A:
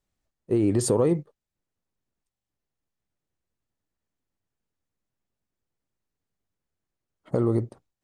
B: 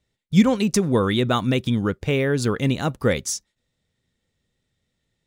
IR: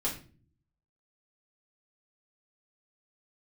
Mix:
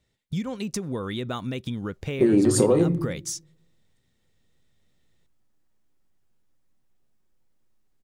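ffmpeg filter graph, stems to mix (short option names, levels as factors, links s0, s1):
-filter_complex "[0:a]adelay=1700,volume=1.33,asplit=2[s0][s1];[s1]volume=0.562[s2];[1:a]acompressor=threshold=0.0316:ratio=5,volume=1.19[s3];[2:a]atrim=start_sample=2205[s4];[s2][s4]afir=irnorm=-1:irlink=0[s5];[s0][s3][s5]amix=inputs=3:normalize=0,acompressor=threshold=0.178:ratio=6"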